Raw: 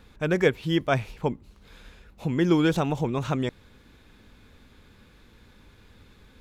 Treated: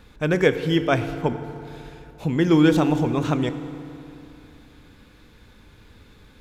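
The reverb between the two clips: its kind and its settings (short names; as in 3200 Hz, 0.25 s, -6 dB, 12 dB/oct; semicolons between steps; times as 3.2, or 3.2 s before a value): FDN reverb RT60 2.9 s, high-frequency decay 0.65×, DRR 9.5 dB; gain +3 dB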